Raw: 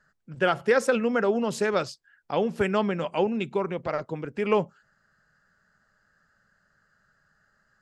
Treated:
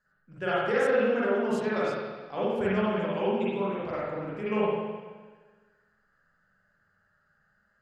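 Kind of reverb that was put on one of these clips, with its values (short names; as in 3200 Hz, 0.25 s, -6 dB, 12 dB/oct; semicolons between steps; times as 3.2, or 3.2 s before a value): spring tank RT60 1.4 s, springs 42/52 ms, chirp 45 ms, DRR -8.5 dB; gain -11.5 dB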